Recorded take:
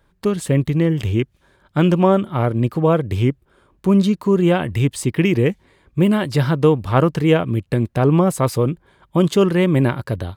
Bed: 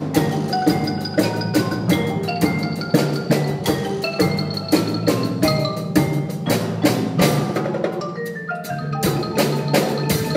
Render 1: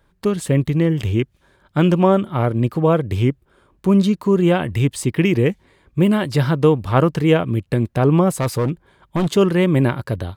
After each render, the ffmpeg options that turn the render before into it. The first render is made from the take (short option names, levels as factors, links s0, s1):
-filter_complex "[0:a]asettb=1/sr,asplit=3[s0][s1][s2];[s0]atrim=end=8.334[s3];[s1]atrim=start=8.33:end=9.37,asetpts=PTS-STARTPTS,afade=t=in:d=0.004:c=qsin,afade=t=out:st=1.036:d=0.004:c=qsin,asoftclip=type=hard:threshold=0.188[s4];[s2]atrim=start=9.366[s5];[s3][s4]acrossfade=d=0.004:c1=hsin:c2=qsin[s6];[s6][s5]acrossfade=d=0.004:c1=qsin:c2=hsin"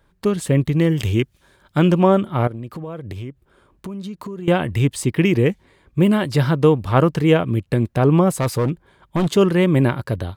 -filter_complex "[0:a]asettb=1/sr,asplit=3[s0][s1][s2];[s0]atrim=end=0.794[s3];[s1]atrim=start=0.79:end=1.79,asetpts=PTS-STARTPTS,afade=t=in:d=0.004:c=qsin,afade=t=out:st=0.996:d=0.004:c=qsin,highshelf=f=3100:g=7.5[s4];[s2]atrim=start=1.786[s5];[s3][s4]acrossfade=d=0.004:c1=hsin:c2=qsin[s6];[s6][s5]acrossfade=d=0.004:c1=qsin:c2=hsin,asettb=1/sr,asplit=3[s7][s8][s9];[s7]atrim=end=2.474[s10];[s8]atrim=start=2.47:end=4.48,asetpts=PTS-STARTPTS,afade=t=in:d=0.004:c=qsin,afade=t=out:st=2.006:d=0.004:c=qsin,acompressor=threshold=0.0447:ratio=12:attack=3.2:release=140:knee=1:detection=peak[s11];[s9]atrim=start=4.476[s12];[s10][s11]acrossfade=d=0.004:c1=hsin:c2=qsin[s13];[s13][s12]acrossfade=d=0.004:c1=qsin:c2=hsin"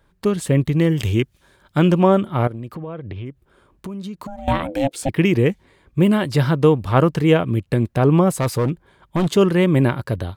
-filter_complex "[0:a]asplit=3[s0][s1][s2];[s0]afade=t=out:st=2.74:d=0.02[s3];[s1]lowpass=f=3500:w=0.5412,lowpass=f=3500:w=1.3066,afade=t=in:st=2.74:d=0.02,afade=t=out:st=3.25:d=0.02[s4];[s2]afade=t=in:st=3.25:d=0.02[s5];[s3][s4][s5]amix=inputs=3:normalize=0,asettb=1/sr,asplit=3[s6][s7][s8];[s6]atrim=end=4.274[s9];[s7]atrim=start=4.27:end=5.09,asetpts=PTS-STARTPTS,afade=t=in:d=0.004:c=qsin,afade=t=out:st=0.816:d=0.004:c=qsin,aeval=exprs='val(0)*sin(2*PI*410*n/s)':c=same[s10];[s8]atrim=start=5.086[s11];[s9][s10]acrossfade=d=0.004:c1=hsin:c2=qsin[s12];[s12][s11]acrossfade=d=0.004:c1=qsin:c2=hsin"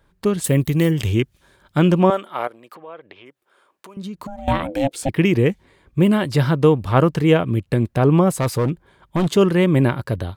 -filter_complex "[0:a]asettb=1/sr,asplit=3[s0][s1][s2];[s0]atrim=end=0.444[s3];[s1]atrim=start=0.44:end=0.91,asetpts=PTS-STARTPTS,afade=t=in:d=0.004:c=qsin,afade=t=out:st=0.466:d=0.004:c=qsin,aemphasis=mode=production:type=50fm[s4];[s2]atrim=start=0.906[s5];[s3][s4]acrossfade=d=0.004:c1=hsin:c2=qsin[s6];[s6][s5]acrossfade=d=0.004:c1=qsin:c2=hsin,asettb=1/sr,asplit=3[s7][s8][s9];[s7]atrim=end=2.104[s10];[s8]atrim=start=2.1:end=3.97,asetpts=PTS-STARTPTS,afade=t=in:d=0.004:c=qsin,afade=t=out:st=1.866:d=0.004:c=qsin,highpass=610[s11];[s9]atrim=start=3.966[s12];[s10][s11]acrossfade=d=0.004:c1=hsin:c2=qsin[s13];[s13][s12]acrossfade=d=0.004:c1=qsin:c2=hsin"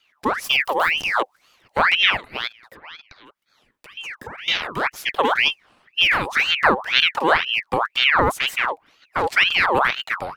-filter_complex "[0:a]acrossover=split=200|950|2400[s0][s1][s2][s3];[s3]asoftclip=type=tanh:threshold=0.0501[s4];[s0][s1][s2][s4]amix=inputs=4:normalize=0,aeval=exprs='val(0)*sin(2*PI*1800*n/s+1800*0.65/2*sin(2*PI*2*n/s))':c=same"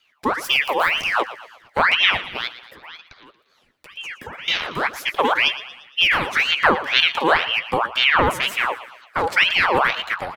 -filter_complex "[0:a]asplit=2[s0][s1];[s1]adelay=12,volume=0.224[s2];[s0][s2]amix=inputs=2:normalize=0,asplit=6[s3][s4][s5][s6][s7][s8];[s4]adelay=116,afreqshift=64,volume=0.178[s9];[s5]adelay=232,afreqshift=128,volume=0.0871[s10];[s6]adelay=348,afreqshift=192,volume=0.0427[s11];[s7]adelay=464,afreqshift=256,volume=0.0209[s12];[s8]adelay=580,afreqshift=320,volume=0.0102[s13];[s3][s9][s10][s11][s12][s13]amix=inputs=6:normalize=0"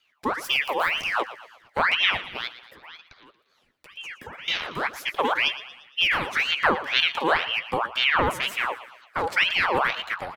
-af "volume=0.562"